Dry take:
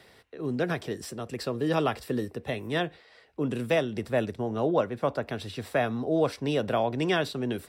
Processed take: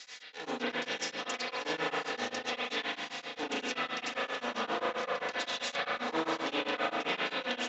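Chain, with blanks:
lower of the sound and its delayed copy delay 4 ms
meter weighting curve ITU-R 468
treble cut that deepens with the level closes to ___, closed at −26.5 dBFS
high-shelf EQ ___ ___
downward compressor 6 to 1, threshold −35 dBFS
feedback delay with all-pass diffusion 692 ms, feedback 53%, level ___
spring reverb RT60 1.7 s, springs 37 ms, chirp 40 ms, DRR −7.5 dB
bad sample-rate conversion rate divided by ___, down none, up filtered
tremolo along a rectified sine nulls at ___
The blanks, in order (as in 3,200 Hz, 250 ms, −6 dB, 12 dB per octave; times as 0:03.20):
2,600 Hz, 6,000 Hz, +11 dB, −10 dB, 3×, 7.6 Hz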